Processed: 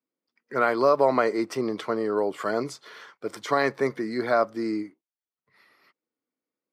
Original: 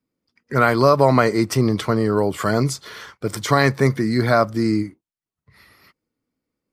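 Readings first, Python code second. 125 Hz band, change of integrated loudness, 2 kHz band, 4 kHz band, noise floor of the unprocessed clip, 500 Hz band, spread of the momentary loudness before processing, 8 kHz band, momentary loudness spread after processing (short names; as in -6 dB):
-21.5 dB, -6.5 dB, -7.0 dB, -10.5 dB, under -85 dBFS, -4.5 dB, 13 LU, -13.5 dB, 15 LU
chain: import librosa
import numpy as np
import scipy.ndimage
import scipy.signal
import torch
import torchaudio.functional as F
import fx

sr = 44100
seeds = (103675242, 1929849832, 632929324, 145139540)

y = fx.dynamic_eq(x, sr, hz=440.0, q=0.72, threshold_db=-24.0, ratio=4.0, max_db=3)
y = scipy.signal.sosfilt(scipy.signal.butter(2, 320.0, 'highpass', fs=sr, output='sos'), y)
y = fx.high_shelf(y, sr, hz=5800.0, db=-11.5)
y = y * 10.0 ** (-6.5 / 20.0)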